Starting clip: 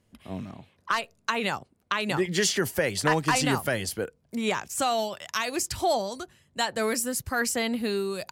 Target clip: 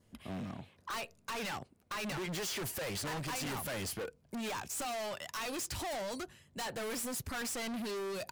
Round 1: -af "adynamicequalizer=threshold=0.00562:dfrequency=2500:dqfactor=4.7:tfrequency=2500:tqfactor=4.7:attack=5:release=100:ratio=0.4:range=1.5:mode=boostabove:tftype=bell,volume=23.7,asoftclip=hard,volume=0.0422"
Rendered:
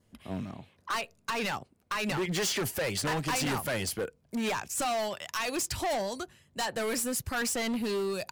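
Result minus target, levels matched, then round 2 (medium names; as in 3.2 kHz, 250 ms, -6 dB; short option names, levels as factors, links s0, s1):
overload inside the chain: distortion -4 dB
-af "adynamicequalizer=threshold=0.00562:dfrequency=2500:dqfactor=4.7:tfrequency=2500:tqfactor=4.7:attack=5:release=100:ratio=0.4:range=1.5:mode=boostabove:tftype=bell,volume=70.8,asoftclip=hard,volume=0.0141"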